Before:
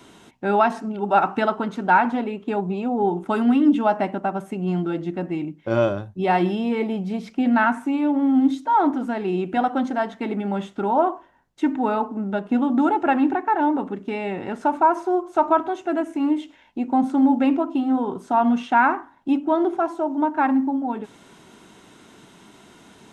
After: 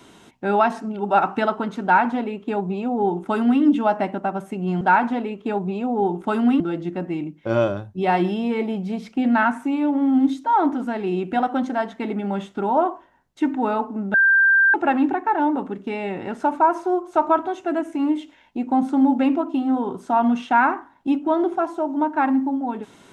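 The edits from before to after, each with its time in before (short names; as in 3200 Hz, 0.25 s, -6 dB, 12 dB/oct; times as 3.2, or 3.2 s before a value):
1.83–3.62 copy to 4.81
12.35–12.95 bleep 1580 Hz -12 dBFS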